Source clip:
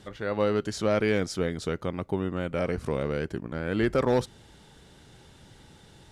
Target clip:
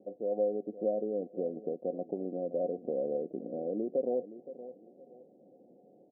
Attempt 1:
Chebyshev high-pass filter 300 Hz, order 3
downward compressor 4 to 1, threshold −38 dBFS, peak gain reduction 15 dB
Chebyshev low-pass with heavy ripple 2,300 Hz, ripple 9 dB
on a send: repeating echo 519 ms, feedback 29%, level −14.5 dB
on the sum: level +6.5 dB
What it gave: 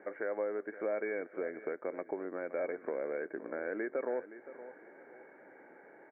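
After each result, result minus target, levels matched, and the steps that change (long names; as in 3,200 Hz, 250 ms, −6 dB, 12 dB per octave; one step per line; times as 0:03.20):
downward compressor: peak gain reduction +5.5 dB; 1,000 Hz band +3.5 dB
change: downward compressor 4 to 1, threshold −30.5 dBFS, peak gain reduction 9 dB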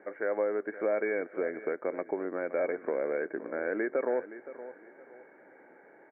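1,000 Hz band +3.5 dB
change: Chebyshev low-pass with heavy ripple 750 Hz, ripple 9 dB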